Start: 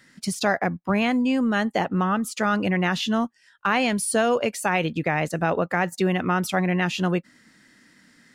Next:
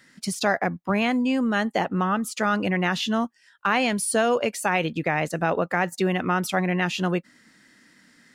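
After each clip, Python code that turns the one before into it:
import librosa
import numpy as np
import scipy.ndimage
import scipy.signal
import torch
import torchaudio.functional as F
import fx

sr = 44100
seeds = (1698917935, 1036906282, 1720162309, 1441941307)

y = fx.low_shelf(x, sr, hz=140.0, db=-5.0)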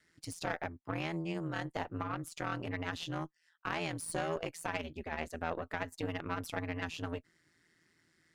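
y = x * np.sin(2.0 * np.pi * 83.0 * np.arange(len(x)) / sr)
y = fx.tube_stage(y, sr, drive_db=15.0, bias=0.75)
y = y * librosa.db_to_amplitude(-7.5)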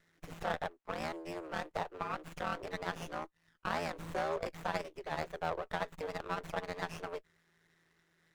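y = scipy.signal.sosfilt(scipy.signal.butter(8, 370.0, 'highpass', fs=sr, output='sos'), x)
y = fx.running_max(y, sr, window=9)
y = y * librosa.db_to_amplitude(1.5)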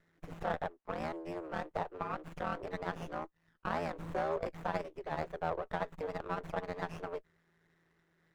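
y = fx.high_shelf(x, sr, hz=2200.0, db=-11.5)
y = y * librosa.db_to_amplitude(2.0)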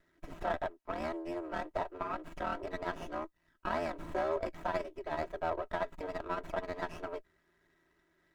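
y = x + 0.61 * np.pad(x, (int(3.1 * sr / 1000.0), 0))[:len(x)]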